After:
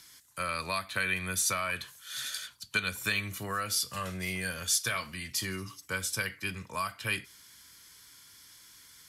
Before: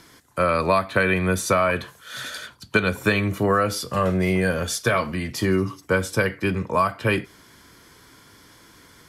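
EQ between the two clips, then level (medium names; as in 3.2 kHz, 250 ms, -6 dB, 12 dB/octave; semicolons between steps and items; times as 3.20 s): amplifier tone stack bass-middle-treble 5-5-5; treble shelf 2.9 kHz +8 dB; 0.0 dB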